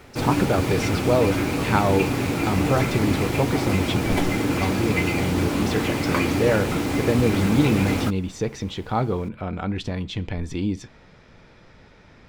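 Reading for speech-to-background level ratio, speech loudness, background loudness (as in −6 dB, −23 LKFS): −1.5 dB, −25.5 LKFS, −24.0 LKFS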